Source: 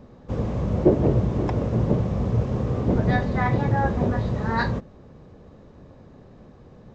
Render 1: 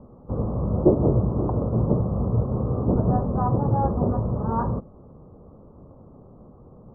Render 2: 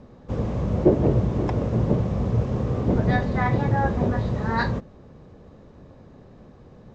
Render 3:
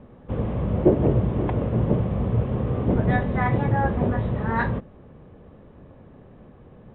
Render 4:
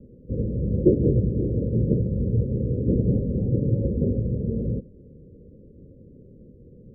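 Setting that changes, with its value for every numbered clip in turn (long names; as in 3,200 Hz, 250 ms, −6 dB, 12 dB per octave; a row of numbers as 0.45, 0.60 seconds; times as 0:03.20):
Butterworth low-pass, frequency: 1,300, 11,000, 3,500, 530 Hertz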